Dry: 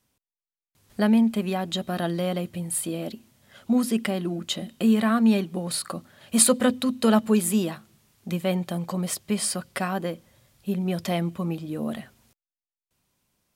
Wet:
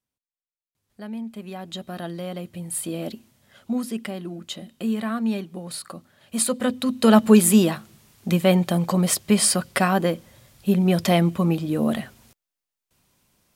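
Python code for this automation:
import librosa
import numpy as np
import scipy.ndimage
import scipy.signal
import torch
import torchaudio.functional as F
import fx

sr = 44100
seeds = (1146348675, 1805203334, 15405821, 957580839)

y = fx.gain(x, sr, db=fx.line((1.02, -15.5), (1.75, -5.5), (2.29, -5.5), (3.08, 2.0), (3.88, -5.0), (6.46, -5.0), (7.3, 7.5)))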